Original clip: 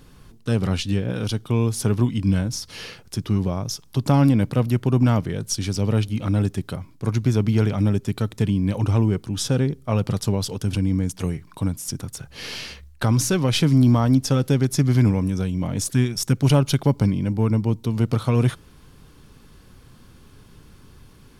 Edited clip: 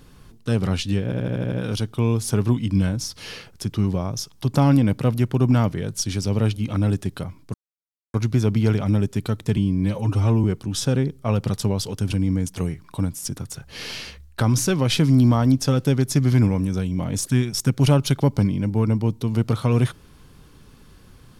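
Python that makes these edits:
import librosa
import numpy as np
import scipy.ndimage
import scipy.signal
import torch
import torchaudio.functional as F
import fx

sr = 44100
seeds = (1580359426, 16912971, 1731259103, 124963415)

y = fx.edit(x, sr, fx.stutter(start_s=1.04, slice_s=0.08, count=7),
    fx.insert_silence(at_s=7.06, length_s=0.6),
    fx.stretch_span(start_s=8.49, length_s=0.58, factor=1.5), tone=tone)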